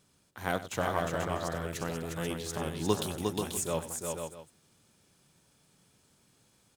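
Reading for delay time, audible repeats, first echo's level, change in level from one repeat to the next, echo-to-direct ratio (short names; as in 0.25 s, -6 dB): 96 ms, 4, -14.5 dB, no steady repeat, -2.0 dB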